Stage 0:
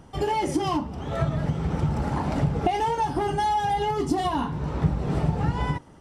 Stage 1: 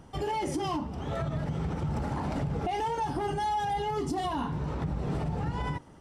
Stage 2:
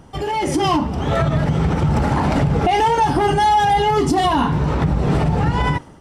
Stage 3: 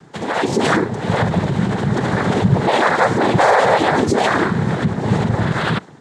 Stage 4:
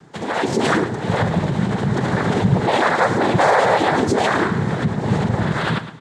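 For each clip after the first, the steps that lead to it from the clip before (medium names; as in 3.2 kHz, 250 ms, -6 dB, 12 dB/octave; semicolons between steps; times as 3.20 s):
peak limiter -21 dBFS, peak gain reduction 10 dB; trim -2.5 dB
dynamic bell 2.2 kHz, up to +3 dB, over -45 dBFS, Q 0.74; level rider gain up to 7 dB; trim +7 dB
noise-vocoded speech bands 6; trim +1.5 dB
feedback delay 111 ms, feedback 35%, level -12.5 dB; trim -2 dB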